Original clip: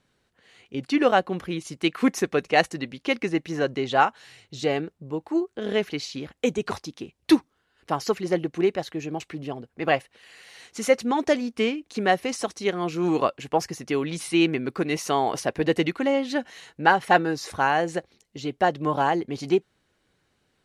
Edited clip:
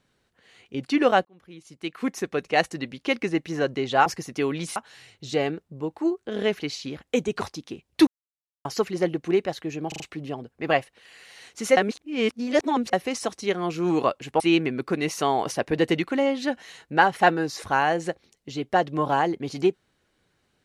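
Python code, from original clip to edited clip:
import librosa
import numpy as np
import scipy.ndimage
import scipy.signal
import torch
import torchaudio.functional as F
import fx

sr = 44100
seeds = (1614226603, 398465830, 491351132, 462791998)

y = fx.edit(x, sr, fx.fade_in_span(start_s=1.25, length_s=1.64),
    fx.silence(start_s=7.37, length_s=0.58),
    fx.stutter(start_s=9.18, slice_s=0.04, count=4),
    fx.reverse_span(start_s=10.95, length_s=1.16),
    fx.move(start_s=13.58, length_s=0.7, to_s=4.06), tone=tone)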